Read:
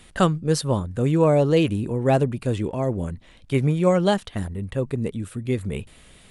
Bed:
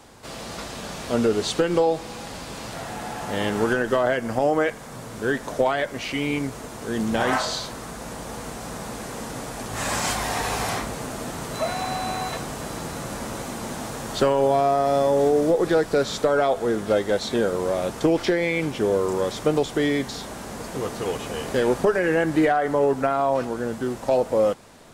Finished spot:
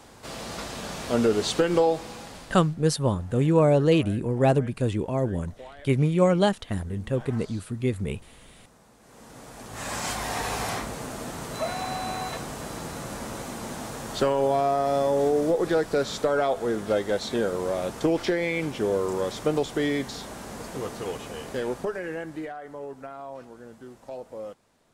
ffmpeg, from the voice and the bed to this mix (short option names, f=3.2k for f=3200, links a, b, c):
-filter_complex "[0:a]adelay=2350,volume=-1.5dB[a];[1:a]volume=18.5dB,afade=t=out:st=1.85:d=0.9:silence=0.0794328,afade=t=in:st=9:d=1.38:silence=0.105925,afade=t=out:st=20.62:d=1.9:silence=0.199526[b];[a][b]amix=inputs=2:normalize=0"